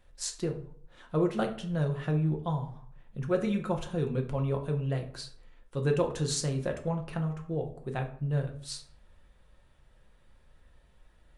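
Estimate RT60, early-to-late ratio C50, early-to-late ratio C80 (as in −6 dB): 0.55 s, 11.0 dB, 15.0 dB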